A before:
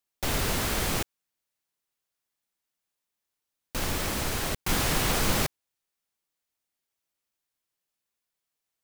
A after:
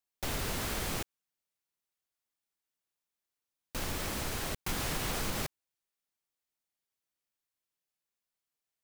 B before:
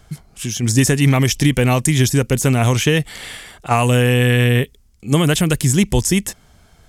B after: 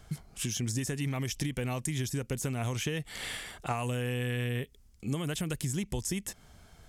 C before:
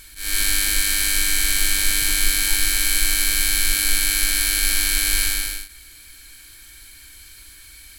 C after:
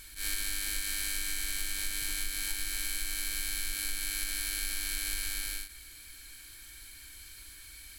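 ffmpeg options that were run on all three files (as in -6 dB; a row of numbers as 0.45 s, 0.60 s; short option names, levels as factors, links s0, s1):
-af "acompressor=threshold=0.0631:ratio=12,volume=0.531"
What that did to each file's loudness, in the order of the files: -7.5 LU, -18.0 LU, -15.0 LU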